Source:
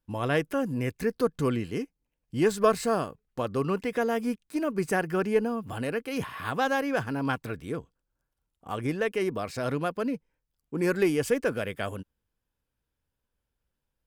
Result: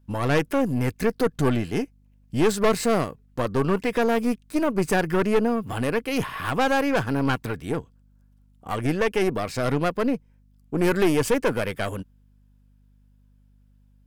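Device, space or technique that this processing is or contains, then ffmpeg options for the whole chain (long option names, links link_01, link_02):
valve amplifier with mains hum: -af "aeval=exprs='(tanh(15.8*val(0)+0.6)-tanh(0.6))/15.8':channel_layout=same,aeval=exprs='val(0)+0.000562*(sin(2*PI*50*n/s)+sin(2*PI*2*50*n/s)/2+sin(2*PI*3*50*n/s)/3+sin(2*PI*4*50*n/s)/4+sin(2*PI*5*50*n/s)/5)':channel_layout=same,volume=9dB"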